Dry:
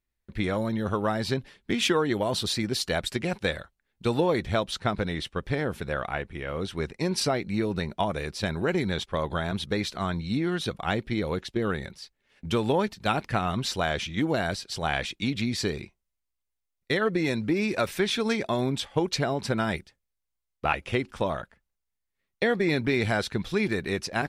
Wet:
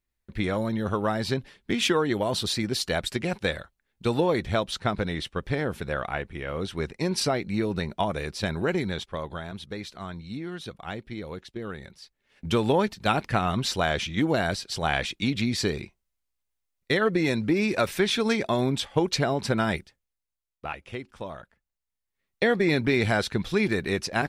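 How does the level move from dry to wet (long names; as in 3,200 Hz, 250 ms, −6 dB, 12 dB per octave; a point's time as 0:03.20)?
0:08.67 +0.5 dB
0:09.53 −8 dB
0:11.75 −8 dB
0:12.46 +2 dB
0:19.72 +2 dB
0:20.72 −9 dB
0:21.32 −9 dB
0:22.45 +2 dB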